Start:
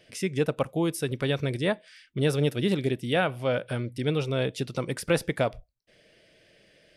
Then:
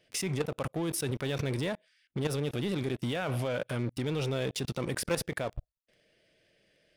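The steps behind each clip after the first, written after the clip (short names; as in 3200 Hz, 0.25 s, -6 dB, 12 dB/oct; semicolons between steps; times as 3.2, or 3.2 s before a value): level quantiser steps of 21 dB; sample leveller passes 3; limiter -23 dBFS, peak gain reduction 9 dB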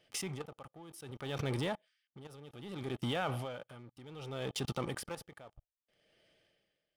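small resonant body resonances 840/1200/3100 Hz, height 10 dB, ringing for 25 ms; dB-linear tremolo 0.64 Hz, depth 18 dB; gain -3 dB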